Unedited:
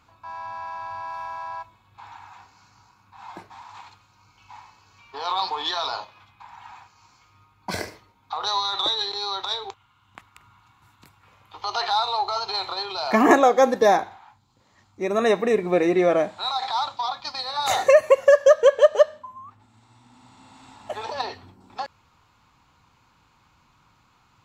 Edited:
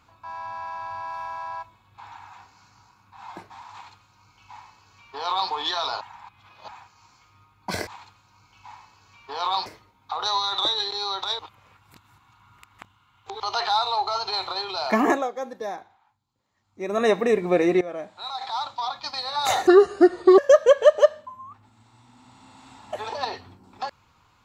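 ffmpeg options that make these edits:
-filter_complex "[0:a]asplit=12[a][b][c][d][e][f][g][h][i][j][k][l];[a]atrim=end=6.012[m];[b]atrim=start=6.008:end=6.682,asetpts=PTS-STARTPTS,areverse[n];[c]atrim=start=6.678:end=7.872[o];[d]atrim=start=3.718:end=5.512[p];[e]atrim=start=7.868:end=9.602[q];[f]atrim=start=9.598:end=11.612,asetpts=PTS-STARTPTS,areverse[r];[g]atrim=start=11.608:end=13.52,asetpts=PTS-STARTPTS,afade=t=out:st=1.422:d=0.49:silence=0.177828[s];[h]atrim=start=13.52:end=14.82,asetpts=PTS-STARTPTS,volume=-15dB[t];[i]atrim=start=14.82:end=16.02,asetpts=PTS-STARTPTS,afade=t=in:d=0.49:silence=0.177828,afade=t=out:st=1.196:d=0.004:c=hsin:silence=0.125893[u];[j]atrim=start=16.02:end=17.884,asetpts=PTS-STARTPTS,afade=t=in:d=1.27:silence=0.125893[v];[k]atrim=start=17.88:end=18.35,asetpts=PTS-STARTPTS,asetrate=29106,aresample=44100[w];[l]atrim=start=18.346[x];[m][n]acrossfade=d=0.004:c1=hsin:c2=hsin[y];[y][o]acrossfade=d=0.004:c1=hsin:c2=hsin[z];[z][p]acrossfade=d=0.004:c1=hsin:c2=hsin[aa];[aa][q]acrossfade=d=0.004:c1=hsin:c2=hsin[ab];[ab][r]acrossfade=d=0.004:c1=hsin:c2=hsin[ac];[s][t][u][v]concat=n=4:v=0:a=1[ad];[ac][ad]acrossfade=d=0.004:c1=hsin:c2=hsin[ae];[ae][w]acrossfade=d=0.004:c1=hsin:c2=hsin[af];[af][x]acrossfade=d=0.004:c1=hsin:c2=hsin"

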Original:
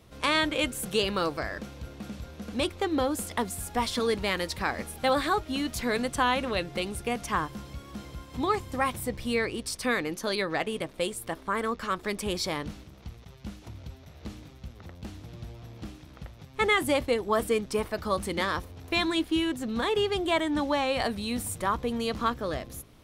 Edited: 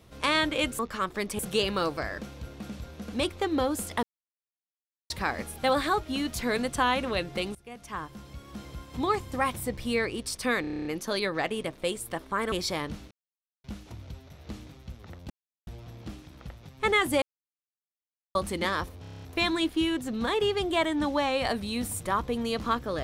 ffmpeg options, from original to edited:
-filter_complex "[0:a]asplit=28[a][b][c][d][e][f][g][h][i][j][k][l][m][n][o][p][q][r][s][t][u][v][w][x][y][z][aa][ab];[a]atrim=end=0.792[ac];[b]atrim=start=11.678:end=12.282[ad];[c]atrim=start=0.788:end=3.43,asetpts=PTS-STARTPTS,afade=t=out:st=2.638:d=0.004:c=hsin[ae];[d]atrim=start=3.43:end=4.5,asetpts=PTS-STARTPTS,volume=0[af];[e]atrim=start=4.5:end=6.95,asetpts=PTS-STARTPTS,afade=t=in:d=0.004:c=hsin,afade=t=out:st=2.446:d=0.004:c=hsin:silence=0.0749894[ag];[f]atrim=start=6.95:end=10.042,asetpts=PTS-STARTPTS,afade=t=in:d=1.18:silence=0.0749894[ah];[g]atrim=start=10.008:end=10.042[ai];[h]atrim=start=10.008:end=10.042[aj];[i]atrim=start=10.008:end=10.042[ak];[j]atrim=start=10.008:end=10.042[al];[k]atrim=start=10.008:end=10.042[am];[l]atrim=start=10.008:end=10.042[an];[m]atrim=start=10.008:end=10.042[ao];[n]atrim=start=10.008:end=11.682[ap];[o]atrim=start=12.278:end=12.87,asetpts=PTS-STARTPTS,afade=t=out:st=0.588:d=0.004:c=hsin[aq];[p]atrim=start=12.87:end=13.4,asetpts=PTS-STARTPTS,volume=0[ar];[q]atrim=start=13.4:end=15.06,asetpts=PTS-STARTPTS,afade=t=in:d=0.004:c=hsin,afade=t=out:st=1.656:d=0.004:c=hsin[as];[r]atrim=start=15.06:end=15.43,asetpts=PTS-STARTPTS,volume=0[at];[s]atrim=start=15.43:end=16.98,asetpts=PTS-STARTPTS,afade=t=in:d=0.004:c=hsin,afade=t=out:st=1.546:d=0.004:c=hsin[au];[t]atrim=start=16.98:end=18.11,asetpts=PTS-STARTPTS,volume=0[av];[u]atrim=start=18.11:end=18.802,asetpts=PTS-STARTPTS,afade=t=in:d=0.004:c=hsin[aw];[v]atrim=start=18.768:end=18.802[ax];[w]atrim=start=18.768:end=18.802[ay];[x]atrim=start=18.768:end=18.802[az];[y]atrim=start=18.768:end=18.802[ba];[z]atrim=start=18.768:end=18.802[bb];[aa]atrim=start=18.768:end=18.802[bc];[ab]atrim=start=18.768[bd];[ac][ad]acrossfade=d=0.004:c1=hsin:c2=hsin[be];[ae][af][ag][ah]concat=n=4:v=0:a=1[bf];[be][bf]acrossfade=d=0.004:c1=hsin:c2=hsin[bg];[bg][ai]acrossfade=d=0.004:c1=hsin:c2=hsin[bh];[bh][aj]acrossfade=d=0.004:c1=hsin:c2=hsin[bi];[bi][ak]acrossfade=d=0.004:c1=hsin:c2=hsin[bj];[bj][al]acrossfade=d=0.004:c1=hsin:c2=hsin[bk];[bk][am]acrossfade=d=0.004:c1=hsin:c2=hsin[bl];[bl][an]acrossfade=d=0.004:c1=hsin:c2=hsin[bm];[bm][ao]acrossfade=d=0.004:c1=hsin:c2=hsin[bn];[bn][ap]acrossfade=d=0.004:c1=hsin:c2=hsin[bo];[aq][ar][as][at][au][av][aw]concat=n=7:v=0:a=1[bp];[bo][bp]acrossfade=d=0.004:c1=hsin:c2=hsin[bq];[bq][ax]acrossfade=d=0.004:c1=hsin:c2=hsin[br];[br][ay]acrossfade=d=0.004:c1=hsin:c2=hsin[bs];[bs][az]acrossfade=d=0.004:c1=hsin:c2=hsin[bt];[bt][ba]acrossfade=d=0.004:c1=hsin:c2=hsin[bu];[bu][bb]acrossfade=d=0.004:c1=hsin:c2=hsin[bv];[bv][bc]acrossfade=d=0.004:c1=hsin:c2=hsin[bw];[bw][bd]acrossfade=d=0.004:c1=hsin:c2=hsin"

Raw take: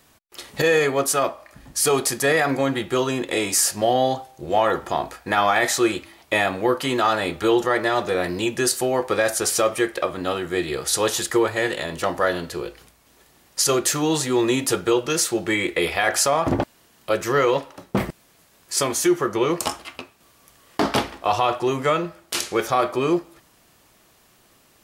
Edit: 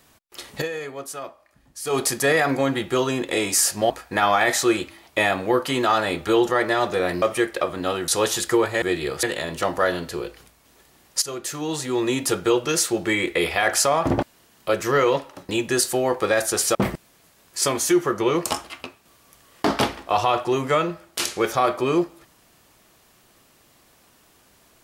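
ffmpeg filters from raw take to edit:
-filter_complex "[0:a]asplit=11[a][b][c][d][e][f][g][h][i][j][k];[a]atrim=end=0.68,asetpts=PTS-STARTPTS,afade=t=out:st=0.54:d=0.14:silence=0.223872[l];[b]atrim=start=0.68:end=1.85,asetpts=PTS-STARTPTS,volume=-13dB[m];[c]atrim=start=1.85:end=3.902,asetpts=PTS-STARTPTS,afade=t=in:d=0.14:silence=0.223872[n];[d]atrim=start=5.048:end=8.372[o];[e]atrim=start=9.628:end=10.492[p];[f]atrim=start=10.898:end=11.642[q];[g]atrim=start=10.488:end=10.902[r];[h]atrim=start=11.638:end=13.63,asetpts=PTS-STARTPTS,afade=t=out:st=1.988:d=0.004:c=hsin:silence=0.188365[s];[i]atrim=start=13.63:end=17.902,asetpts=PTS-STARTPTS,afade=t=in:d=1.24:silence=0.188365[t];[j]atrim=start=8.368:end=9.632[u];[k]atrim=start=17.898[v];[l][m][n]concat=n=3:v=0:a=1[w];[w][o]acrossfade=d=0.004:c1=hsin:c2=hsin[x];[x][p]acrossfade=d=0.004:c1=hsin:c2=hsin[y];[y][q]acrossfade=d=0.004:c1=hsin:c2=hsin[z];[z][r]acrossfade=d=0.004:c1=hsin:c2=hsin[aa];[s][t]concat=n=2:v=0:a=1[ab];[aa][ab]acrossfade=d=0.004:c1=hsin:c2=hsin[ac];[ac][u]acrossfade=d=0.004:c1=hsin:c2=hsin[ad];[ad][v]acrossfade=d=0.004:c1=hsin:c2=hsin"

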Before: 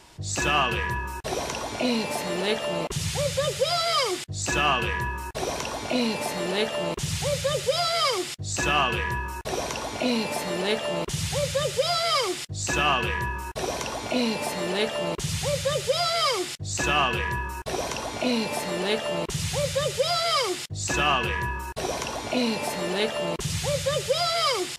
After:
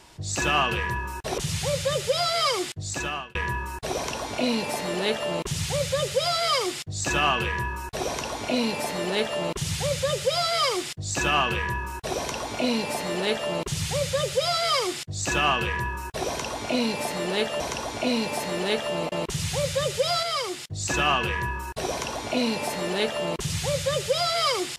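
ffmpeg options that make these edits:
-filter_complex "[0:a]asplit=7[a][b][c][d][e][f][g];[a]atrim=end=1.382[h];[b]atrim=start=2.898:end=4.87,asetpts=PTS-STARTPTS,afade=t=out:st=1.392:d=0.58[i];[c]atrim=start=4.87:end=19.122,asetpts=PTS-STARTPTS,afade=t=in:d=0.004:c=hsin[j];[d]atrim=start=1.378:end=2.902[k];[e]atrim=start=19.118:end=20.232[l];[f]atrim=start=20.228:end=20.672,asetpts=PTS-STARTPTS,volume=-4dB[m];[g]atrim=start=20.668[n];[i][j]concat=n=2:v=0:a=1[o];[h][o]acrossfade=d=0.004:c1=hsin:c2=hsin[p];[p][k]acrossfade=d=0.004:c1=hsin:c2=hsin[q];[q][l]acrossfade=d=0.004:c1=hsin:c2=hsin[r];[r][m]acrossfade=d=0.004:c1=hsin:c2=hsin[s];[s][n]acrossfade=d=0.004:c1=hsin:c2=hsin"

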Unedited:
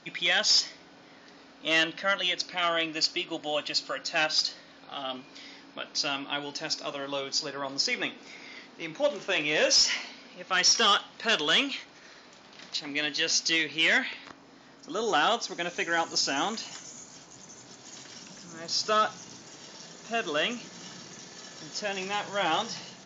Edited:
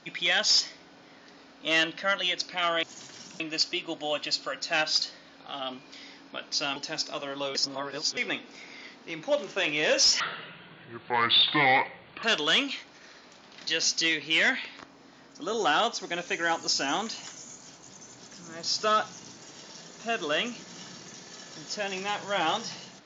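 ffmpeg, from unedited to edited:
-filter_complex "[0:a]asplit=10[a][b][c][d][e][f][g][h][i][j];[a]atrim=end=2.832[k];[b]atrim=start=17.788:end=18.362[l];[c]atrim=start=2.828:end=6.192[m];[d]atrim=start=6.478:end=7.272[n];[e]atrim=start=7.268:end=7.892,asetpts=PTS-STARTPTS,areverse[o];[f]atrim=start=7.888:end=9.924[p];[g]atrim=start=9.92:end=11.24,asetpts=PTS-STARTPTS,asetrate=28665,aresample=44100[q];[h]atrim=start=11.236:end=12.682[r];[i]atrim=start=13.148:end=17.792[s];[j]atrim=start=18.358[t];[k][l]acrossfade=d=0.004:c1=hsin:c2=hsin[u];[u][m]acrossfade=d=0.004:c1=hsin:c2=hsin[v];[v][n]acrossfade=d=0.004:c1=hsin:c2=hsin[w];[w][o]acrossfade=d=0.004:c1=hsin:c2=hsin[x];[x][p]acrossfade=d=0.004:c1=hsin:c2=hsin[y];[y][q]acrossfade=d=0.004:c1=hsin:c2=hsin[z];[z][r]acrossfade=d=0.004:c1=hsin:c2=hsin[aa];[aa][s]acrossfade=d=0.004:c1=hsin:c2=hsin[ab];[ab][t]acrossfade=d=0.004:c1=hsin:c2=hsin"

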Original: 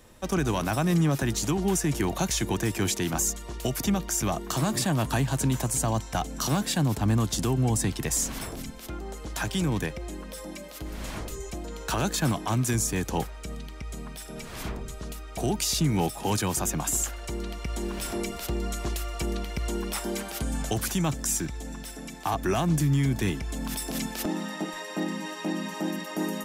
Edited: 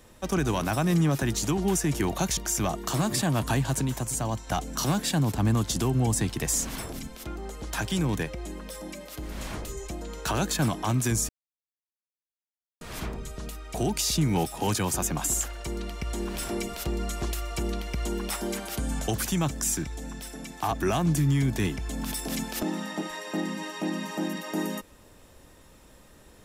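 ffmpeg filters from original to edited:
-filter_complex "[0:a]asplit=6[a][b][c][d][e][f];[a]atrim=end=2.372[g];[b]atrim=start=3.998:end=5.442[h];[c]atrim=start=5.438:end=6.102,asetpts=PTS-STARTPTS,volume=-3dB[i];[d]atrim=start=6.098:end=12.92,asetpts=PTS-STARTPTS,afade=t=out:st=6.818:d=0.004:c=hsin[j];[e]atrim=start=12.92:end=14.44,asetpts=PTS-STARTPTS,volume=0[k];[f]atrim=start=14.44,asetpts=PTS-STARTPTS,afade=t=in:d=0.004:c=hsin[l];[g][h]acrossfade=d=0.004:c1=hsin:c2=hsin[m];[m][i]acrossfade=d=0.004:c1=hsin:c2=hsin[n];[j][k][l]concat=n=3:v=0:a=1[o];[n][o]acrossfade=d=0.004:c1=hsin:c2=hsin"

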